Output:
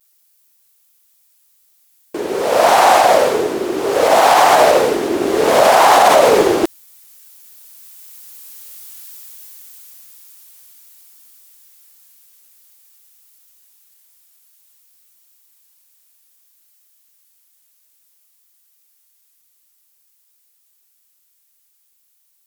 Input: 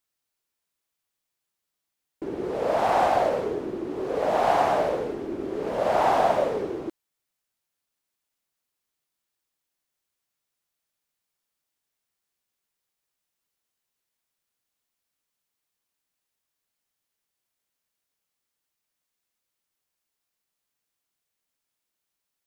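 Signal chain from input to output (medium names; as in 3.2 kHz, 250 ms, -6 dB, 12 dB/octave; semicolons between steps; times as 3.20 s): Doppler pass-by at 8.87 s, 12 m/s, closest 9 m; vibrato 0.55 Hz 46 cents; RIAA curve recording; loudness maximiser +32.5 dB; loudspeaker Doppler distortion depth 0.26 ms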